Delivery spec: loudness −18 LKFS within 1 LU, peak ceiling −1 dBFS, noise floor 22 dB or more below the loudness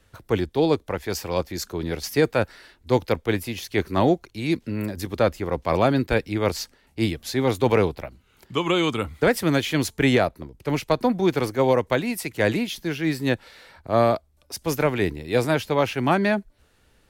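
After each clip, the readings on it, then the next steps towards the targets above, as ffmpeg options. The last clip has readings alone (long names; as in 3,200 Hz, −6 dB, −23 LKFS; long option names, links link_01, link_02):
integrated loudness −23.5 LKFS; sample peak −8.0 dBFS; target loudness −18.0 LKFS
→ -af "volume=5.5dB"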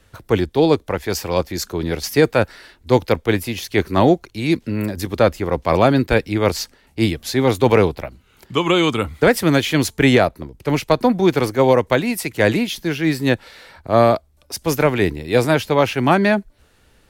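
integrated loudness −18.0 LKFS; sample peak −2.5 dBFS; background noise floor −56 dBFS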